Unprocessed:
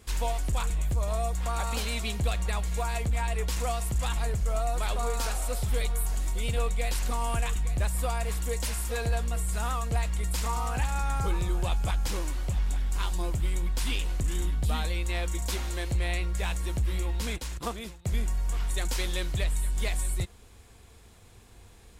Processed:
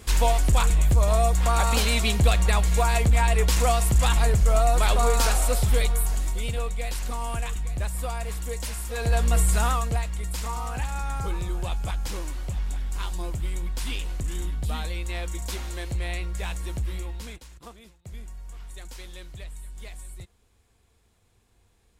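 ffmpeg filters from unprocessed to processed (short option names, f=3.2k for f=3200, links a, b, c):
-af "volume=19.5dB,afade=t=out:st=5.36:d=1.25:silence=0.334965,afade=t=in:st=8.93:d=0.46:silence=0.281838,afade=t=out:st=9.39:d=0.67:silence=0.281838,afade=t=out:st=16.81:d=0.66:silence=0.298538"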